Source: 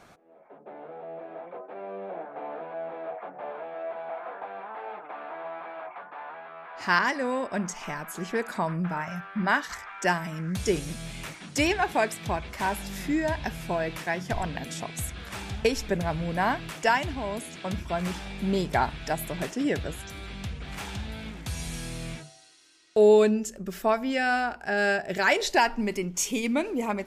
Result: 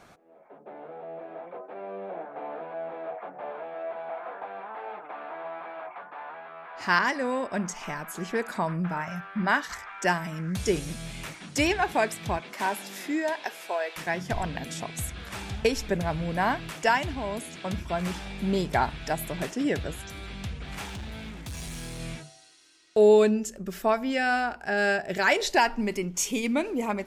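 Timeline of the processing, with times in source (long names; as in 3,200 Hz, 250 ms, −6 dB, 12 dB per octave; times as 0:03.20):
0:12.38–0:13.96: high-pass filter 170 Hz → 520 Hz 24 dB per octave
0:20.87–0:22.00: hard clipping −34 dBFS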